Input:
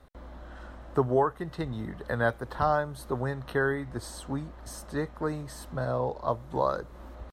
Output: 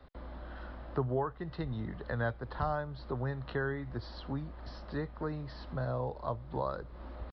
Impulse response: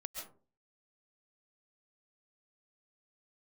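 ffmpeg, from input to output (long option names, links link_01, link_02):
-filter_complex "[0:a]acrossover=split=140[link_01][link_02];[link_02]acompressor=threshold=-46dB:ratio=1.5[link_03];[link_01][link_03]amix=inputs=2:normalize=0,aresample=11025,aresample=44100"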